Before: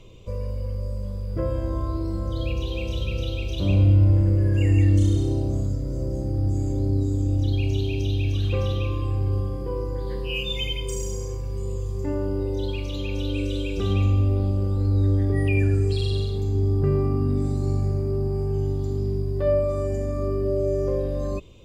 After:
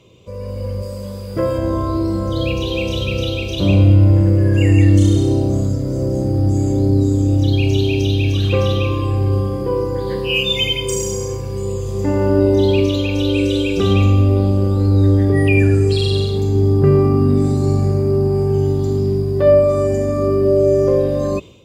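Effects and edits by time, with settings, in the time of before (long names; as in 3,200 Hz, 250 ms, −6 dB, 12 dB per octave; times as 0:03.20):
0:00.82–0:01.58: spectral tilt +1.5 dB per octave
0:11.77–0:12.64: thrown reverb, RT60 2.7 s, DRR 0.5 dB
whole clip: high-pass filter 110 Hz 12 dB per octave; automatic gain control gain up to 10 dB; level +1.5 dB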